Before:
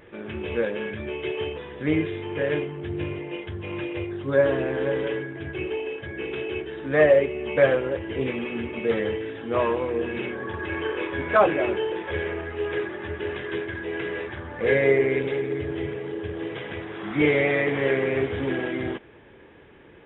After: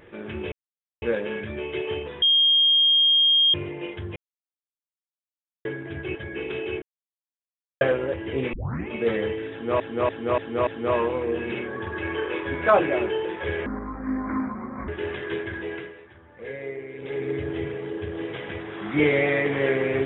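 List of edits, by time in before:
0:00.52: splice in silence 0.50 s
0:01.72–0:03.04: beep over 3,230 Hz −15 dBFS
0:03.66–0:05.15: silence
0:05.65–0:05.98: remove
0:06.65–0:07.64: silence
0:08.36: tape start 0.35 s
0:09.34–0:09.63: repeat, 5 plays
0:12.33–0:13.10: play speed 63%
0:13.84–0:15.50: duck −15 dB, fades 0.32 s linear

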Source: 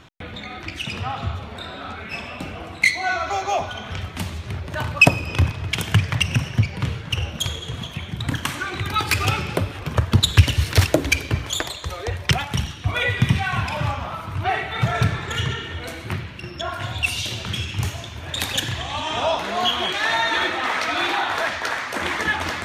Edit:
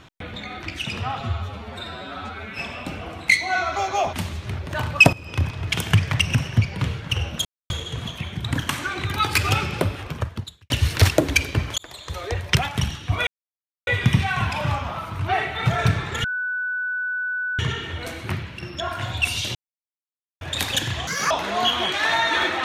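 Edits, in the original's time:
0:01.20–0:02.12: time-stretch 1.5×
0:03.67–0:04.14: remove
0:05.14–0:05.66: fade in, from −14.5 dB
0:07.46: splice in silence 0.25 s
0:09.76–0:10.46: fade out quadratic
0:11.54–0:11.98: fade in
0:13.03: splice in silence 0.60 s
0:15.40: insert tone 1,490 Hz −23 dBFS 1.35 s
0:17.36–0:18.22: silence
0:18.88–0:19.31: play speed 181%

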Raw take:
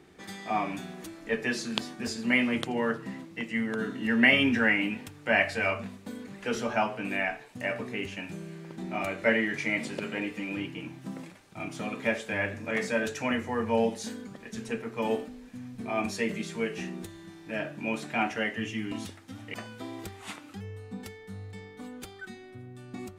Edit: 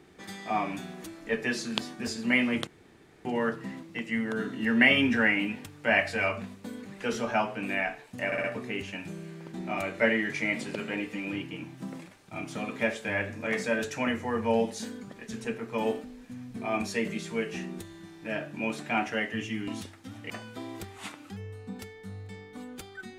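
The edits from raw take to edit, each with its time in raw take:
0:02.67: splice in room tone 0.58 s
0:07.68: stutter 0.06 s, 4 plays

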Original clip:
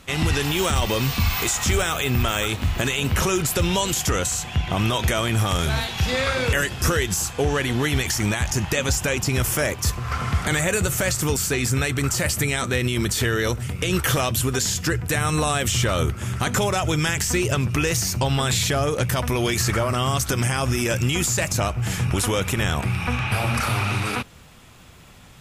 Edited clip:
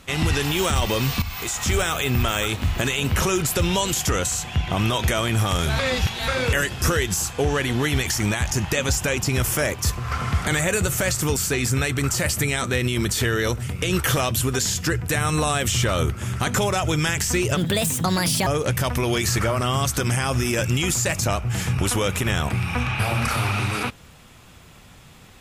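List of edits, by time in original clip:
0:01.22–0:01.80: fade in, from −12 dB
0:05.79–0:06.28: reverse
0:17.57–0:18.79: play speed 136%

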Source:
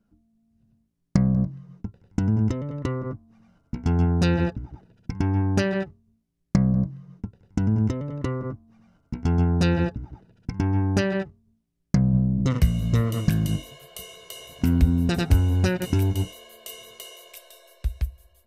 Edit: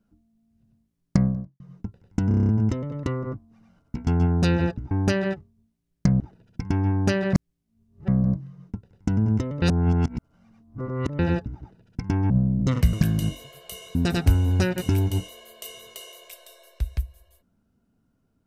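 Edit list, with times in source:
0:01.24–0:01.60: fade out quadratic
0:02.28: stutter 0.03 s, 8 plays
0:05.83–0:06.58: reverse
0:08.12–0:09.69: reverse
0:10.80–0:12.09: move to 0:04.70
0:12.72–0:13.20: remove
0:14.22–0:14.99: remove

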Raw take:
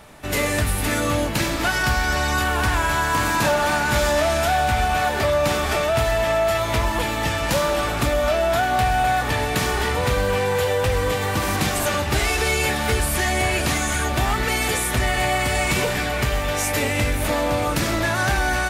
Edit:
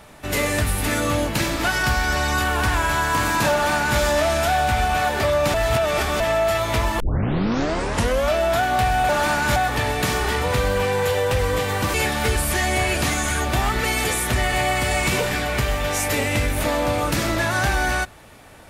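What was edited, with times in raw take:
0:03.52–0:03.99: duplicate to 0:09.09
0:05.54–0:06.20: reverse
0:07.00: tape start 1.29 s
0:11.47–0:12.58: remove

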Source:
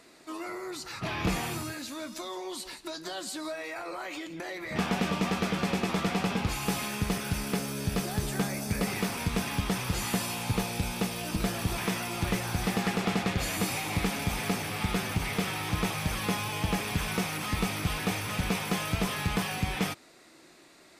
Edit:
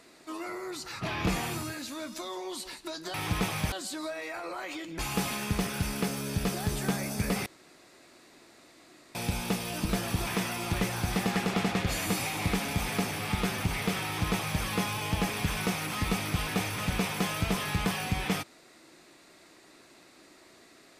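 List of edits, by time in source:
0:04.41–0:06.50: remove
0:08.97–0:10.66: fill with room tone
0:15.56–0:16.14: duplicate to 0:03.14

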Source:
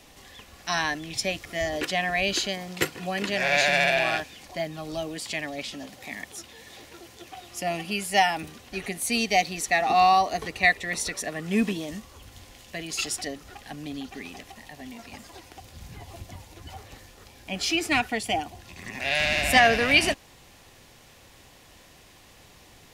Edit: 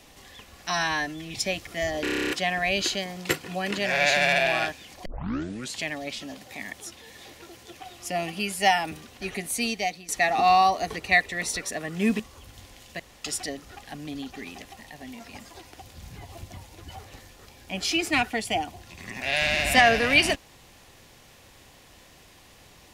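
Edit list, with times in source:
0:00.70–0:01.13: time-stretch 1.5×
0:01.81: stutter 0.03 s, 10 plays
0:04.57: tape start 0.73 s
0:09.01–0:09.60: fade out, to −15.5 dB
0:11.71–0:11.98: remove
0:12.78–0:13.03: fill with room tone

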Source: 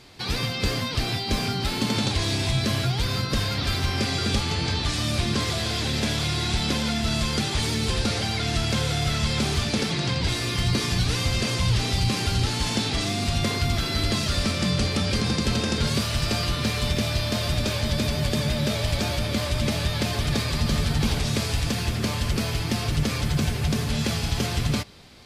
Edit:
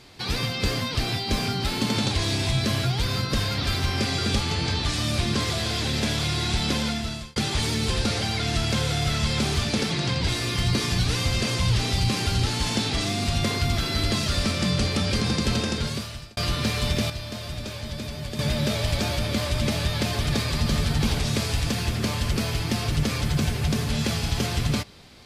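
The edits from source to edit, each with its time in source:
0:06.83–0:07.36: fade out
0:15.57–0:16.37: fade out linear
0:17.10–0:18.39: clip gain −8.5 dB

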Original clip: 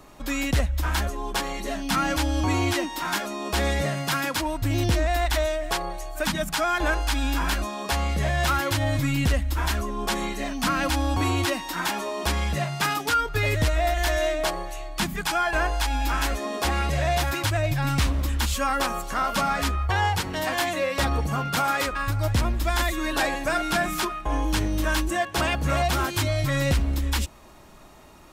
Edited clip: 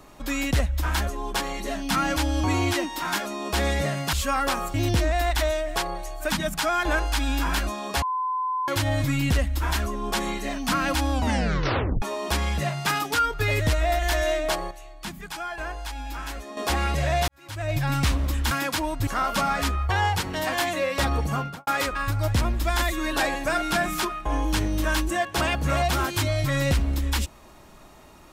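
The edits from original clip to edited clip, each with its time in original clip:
0:04.13–0:04.69: swap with 0:18.46–0:19.07
0:07.97–0:08.63: beep over 1,020 Hz −23.5 dBFS
0:11.07: tape stop 0.90 s
0:14.66–0:16.52: clip gain −9 dB
0:17.23–0:17.71: fade in quadratic
0:21.36–0:21.67: fade out and dull

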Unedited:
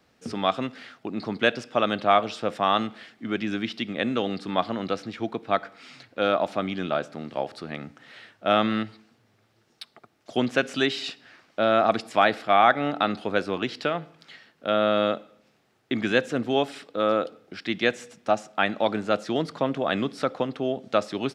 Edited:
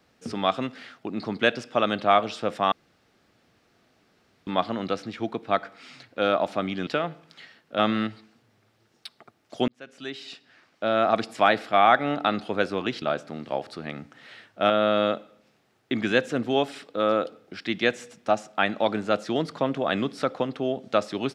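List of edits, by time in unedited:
0:02.72–0:04.47: fill with room tone
0:06.87–0:08.55: swap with 0:13.78–0:14.70
0:10.44–0:12.05: fade in

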